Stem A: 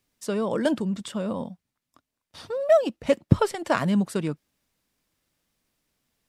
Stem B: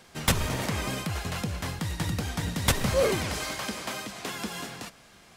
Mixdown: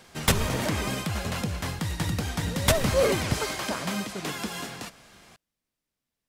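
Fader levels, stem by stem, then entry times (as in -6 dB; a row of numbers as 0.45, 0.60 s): -10.5, +1.5 dB; 0.00, 0.00 s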